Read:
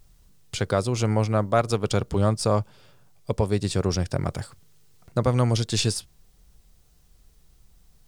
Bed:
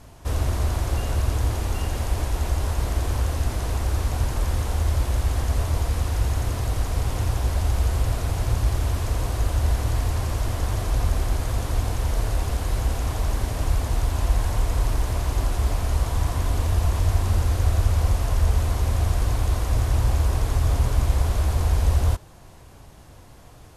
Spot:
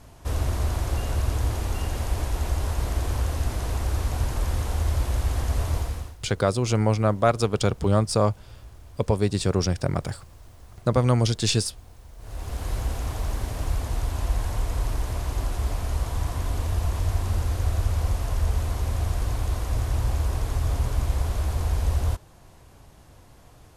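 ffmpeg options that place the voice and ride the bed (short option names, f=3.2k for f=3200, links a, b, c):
-filter_complex "[0:a]adelay=5700,volume=1dB[a];[1:a]volume=17.5dB,afade=t=out:st=5.74:d=0.42:silence=0.0841395,afade=t=in:st=12.18:d=0.5:silence=0.105925[b];[a][b]amix=inputs=2:normalize=0"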